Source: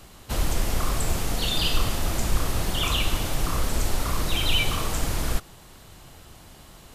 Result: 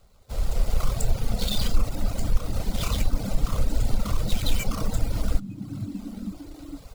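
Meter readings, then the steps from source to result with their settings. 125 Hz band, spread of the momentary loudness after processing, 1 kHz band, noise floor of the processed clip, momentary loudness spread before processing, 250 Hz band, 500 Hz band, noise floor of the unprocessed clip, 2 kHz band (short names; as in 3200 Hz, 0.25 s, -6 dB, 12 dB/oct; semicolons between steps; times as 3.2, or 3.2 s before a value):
+0.5 dB, 8 LU, -6.5 dB, -48 dBFS, 5 LU, +1.0 dB, -3.0 dB, -49 dBFS, -9.5 dB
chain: median filter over 15 samples; passive tone stack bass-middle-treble 10-0-10; frequency-shifting echo 0.453 s, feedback 40%, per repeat +90 Hz, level -19.5 dB; AGC gain up to 16 dB; notch 1700 Hz, Q 7.7; reverb removal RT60 1.1 s; in parallel at +2 dB: compressor, threshold -22 dBFS, peak gain reduction 14.5 dB; on the sum: graphic EQ 250/500/1000/2000 Hz +10/+9/-6/-5 dB; gain -7.5 dB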